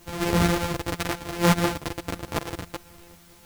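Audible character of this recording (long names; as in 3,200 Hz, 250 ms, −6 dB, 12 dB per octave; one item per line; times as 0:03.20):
a buzz of ramps at a fixed pitch in blocks of 256 samples
sample-and-hold tremolo
a quantiser's noise floor 10 bits, dither triangular
a shimmering, thickened sound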